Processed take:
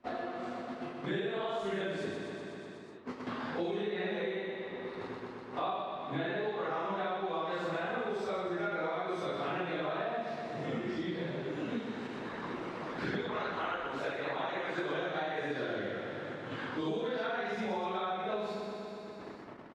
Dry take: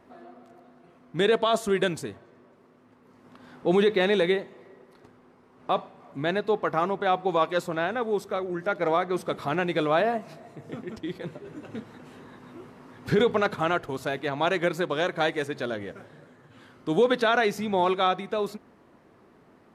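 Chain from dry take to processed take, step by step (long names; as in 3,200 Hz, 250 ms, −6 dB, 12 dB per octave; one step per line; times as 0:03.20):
random phases in long frames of 200 ms
low-pass filter 4,500 Hz 12 dB per octave
low-shelf EQ 370 Hz −3.5 dB
noise gate −55 dBFS, range −30 dB
0:12.07–0:14.78: harmonic and percussive parts rebalanced harmonic −18 dB
downward compressor, threshold −29 dBFS, peak gain reduction 11 dB
repeating echo 123 ms, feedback 53%, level −6 dB
multiband upward and downward compressor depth 100%
level −4 dB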